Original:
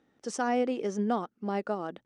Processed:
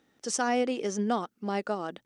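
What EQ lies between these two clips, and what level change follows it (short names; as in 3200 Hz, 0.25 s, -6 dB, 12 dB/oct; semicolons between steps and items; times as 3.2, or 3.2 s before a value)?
high shelf 2400 Hz +10 dB; 0.0 dB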